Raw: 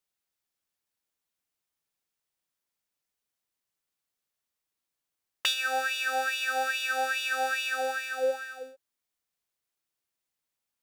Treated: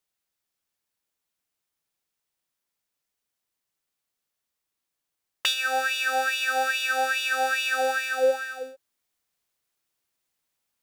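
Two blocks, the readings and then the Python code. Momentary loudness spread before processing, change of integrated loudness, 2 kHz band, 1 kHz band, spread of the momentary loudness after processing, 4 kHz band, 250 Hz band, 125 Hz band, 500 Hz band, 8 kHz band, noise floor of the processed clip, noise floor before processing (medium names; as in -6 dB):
6 LU, +4.0 dB, +4.0 dB, +4.0 dB, 6 LU, +3.5 dB, +4.5 dB, no reading, +5.5 dB, +4.0 dB, -84 dBFS, under -85 dBFS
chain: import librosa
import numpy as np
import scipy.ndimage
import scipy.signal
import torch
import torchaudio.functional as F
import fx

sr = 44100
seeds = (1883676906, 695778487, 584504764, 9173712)

y = fx.rider(x, sr, range_db=10, speed_s=0.5)
y = F.gain(torch.from_numpy(y), 4.5).numpy()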